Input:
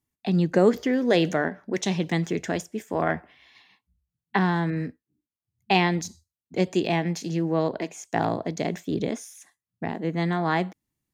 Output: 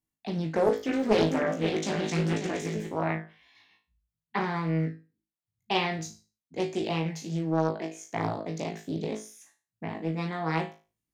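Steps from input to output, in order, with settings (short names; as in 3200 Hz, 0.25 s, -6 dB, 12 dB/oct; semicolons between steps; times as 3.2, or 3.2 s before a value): 0.62–2.87 regenerating reverse delay 0.269 s, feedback 51%, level -2.5 dB; flutter echo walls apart 3.2 m, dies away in 0.32 s; Doppler distortion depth 0.56 ms; gain -7.5 dB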